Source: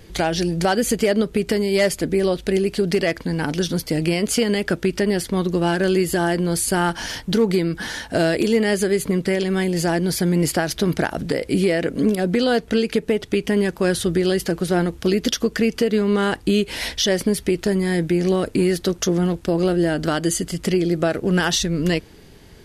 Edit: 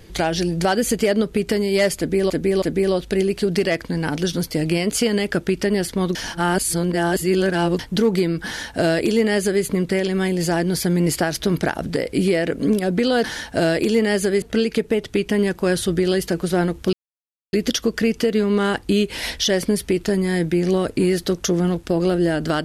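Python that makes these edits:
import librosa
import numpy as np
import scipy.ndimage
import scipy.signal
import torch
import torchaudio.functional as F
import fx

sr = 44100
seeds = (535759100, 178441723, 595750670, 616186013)

y = fx.edit(x, sr, fx.repeat(start_s=1.98, length_s=0.32, count=3),
    fx.reverse_span(start_s=5.51, length_s=1.64),
    fx.duplicate(start_s=7.82, length_s=1.18, to_s=12.6),
    fx.insert_silence(at_s=15.11, length_s=0.6), tone=tone)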